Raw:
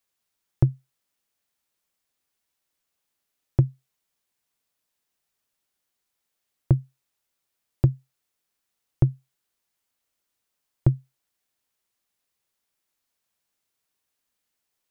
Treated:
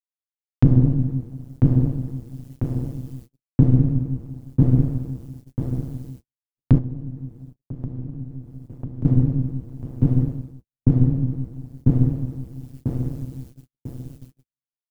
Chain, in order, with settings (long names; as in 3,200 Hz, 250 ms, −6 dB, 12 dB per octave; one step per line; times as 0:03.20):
bass and treble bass +4 dB, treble +3 dB
repeating echo 995 ms, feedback 30%, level −9 dB
dense smooth reverb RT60 1.6 s, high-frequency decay 1×, DRR −9 dB
dynamic equaliser 160 Hz, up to +8 dB, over −27 dBFS, Q 1.1
amplitude modulation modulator 130 Hz, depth 95%
automatic gain control gain up to 14 dB
noise gate −38 dBFS, range −55 dB
0:06.78–0:09.05: downward compressor 3 to 1, threshold −29 dBFS, peak gain reduction 15.5 dB
level −1 dB